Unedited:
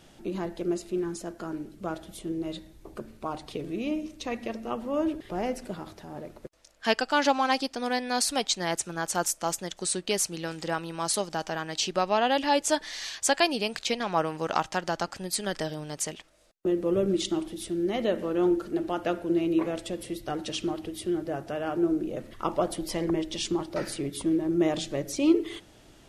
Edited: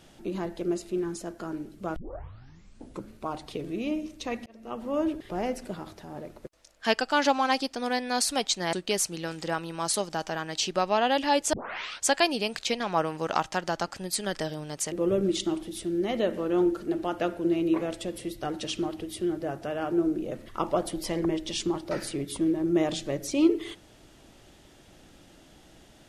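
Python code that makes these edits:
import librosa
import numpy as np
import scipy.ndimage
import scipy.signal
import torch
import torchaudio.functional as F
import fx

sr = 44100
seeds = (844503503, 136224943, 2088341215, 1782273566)

y = fx.edit(x, sr, fx.tape_start(start_s=1.96, length_s=1.17),
    fx.fade_in_span(start_s=4.46, length_s=0.43),
    fx.cut(start_s=8.73, length_s=1.2),
    fx.tape_start(start_s=12.73, length_s=0.52),
    fx.cut(start_s=16.12, length_s=0.65), tone=tone)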